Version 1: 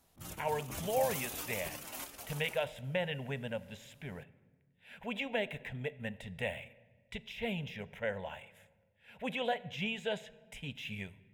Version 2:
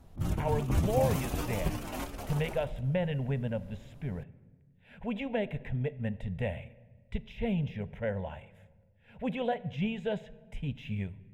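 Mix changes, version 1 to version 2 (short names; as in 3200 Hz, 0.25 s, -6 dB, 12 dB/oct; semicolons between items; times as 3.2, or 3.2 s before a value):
background +8.0 dB; master: add tilt -3.5 dB/oct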